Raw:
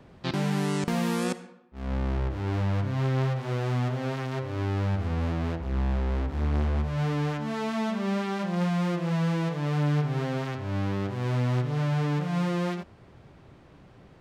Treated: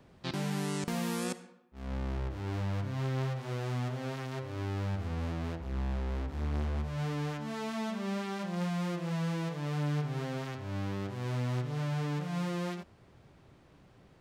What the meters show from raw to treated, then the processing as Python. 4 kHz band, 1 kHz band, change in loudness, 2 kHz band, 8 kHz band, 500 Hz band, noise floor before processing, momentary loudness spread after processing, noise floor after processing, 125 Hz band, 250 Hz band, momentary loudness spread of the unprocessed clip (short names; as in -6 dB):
-4.5 dB, -6.5 dB, -7.0 dB, -6.0 dB, n/a, -7.0 dB, -53 dBFS, 5 LU, -60 dBFS, -7.0 dB, -7.0 dB, 5 LU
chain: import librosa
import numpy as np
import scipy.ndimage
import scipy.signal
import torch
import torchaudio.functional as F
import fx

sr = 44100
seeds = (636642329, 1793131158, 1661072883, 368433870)

y = fx.high_shelf(x, sr, hz=4900.0, db=7.5)
y = y * librosa.db_to_amplitude(-7.0)